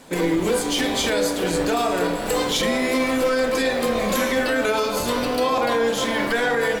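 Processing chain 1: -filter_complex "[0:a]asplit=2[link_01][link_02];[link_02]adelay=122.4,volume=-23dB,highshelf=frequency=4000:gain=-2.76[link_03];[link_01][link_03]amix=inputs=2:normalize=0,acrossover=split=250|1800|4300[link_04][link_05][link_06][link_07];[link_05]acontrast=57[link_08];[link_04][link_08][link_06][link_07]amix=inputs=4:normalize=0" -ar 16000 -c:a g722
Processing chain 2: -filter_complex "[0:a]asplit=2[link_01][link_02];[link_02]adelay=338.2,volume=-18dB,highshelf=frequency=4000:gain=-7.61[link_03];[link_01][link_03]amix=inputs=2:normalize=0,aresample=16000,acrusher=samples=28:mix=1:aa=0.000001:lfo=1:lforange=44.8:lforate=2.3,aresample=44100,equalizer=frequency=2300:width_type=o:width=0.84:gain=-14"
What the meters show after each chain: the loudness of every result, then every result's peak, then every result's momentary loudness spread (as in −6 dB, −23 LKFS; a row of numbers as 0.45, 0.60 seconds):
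−17.0, −23.0 LKFS; −6.0, −10.5 dBFS; 3, 2 LU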